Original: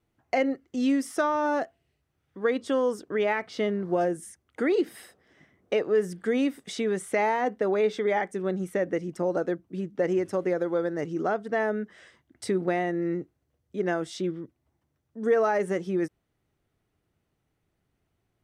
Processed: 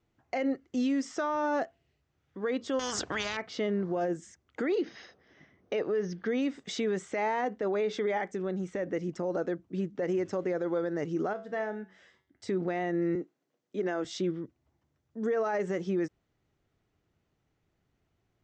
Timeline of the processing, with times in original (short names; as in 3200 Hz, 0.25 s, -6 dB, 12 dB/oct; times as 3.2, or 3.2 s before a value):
2.79–3.37 spectral compressor 4:1
4.76–6.42 brick-wall FIR low-pass 6600 Hz
8.27–8.82 compressor 2.5:1, threshold -30 dBFS
11.33–12.49 resonator 95 Hz, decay 0.42 s, mix 70%
13.15–14.05 HPF 200 Hz 24 dB/oct
whole clip: steep low-pass 7600 Hz 72 dB/oct; limiter -22.5 dBFS